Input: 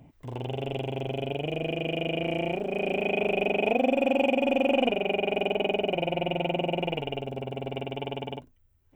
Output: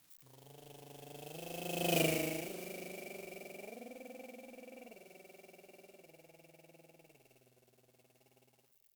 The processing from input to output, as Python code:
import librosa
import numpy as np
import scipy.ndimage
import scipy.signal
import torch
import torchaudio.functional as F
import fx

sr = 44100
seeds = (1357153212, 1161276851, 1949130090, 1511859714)

y = x + 0.5 * 10.0 ** (-21.5 / 20.0) * np.diff(np.sign(x), prepend=np.sign(x[:1]))
y = fx.doppler_pass(y, sr, speed_mps=22, closest_m=2.2, pass_at_s=1.99)
y = fx.echo_split(y, sr, split_hz=2200.0, low_ms=111, high_ms=186, feedback_pct=52, wet_db=-13)
y = F.gain(torch.from_numpy(y), -1.5).numpy()